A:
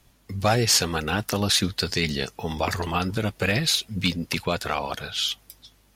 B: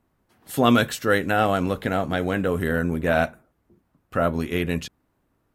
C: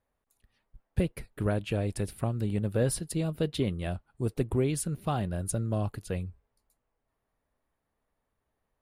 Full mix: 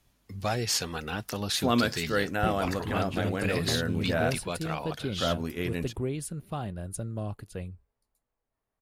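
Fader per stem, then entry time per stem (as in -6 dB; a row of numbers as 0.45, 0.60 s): -8.5, -7.5, -4.5 dB; 0.00, 1.05, 1.45 s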